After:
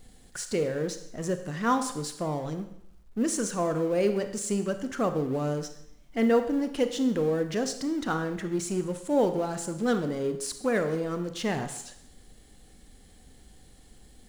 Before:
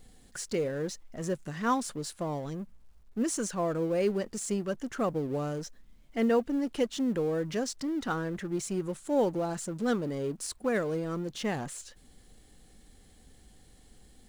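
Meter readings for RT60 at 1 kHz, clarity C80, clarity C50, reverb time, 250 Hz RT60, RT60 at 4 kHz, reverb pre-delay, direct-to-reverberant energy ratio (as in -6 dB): 0.80 s, 12.5 dB, 10.0 dB, 0.75 s, 0.70 s, 0.70 s, 29 ms, 8.0 dB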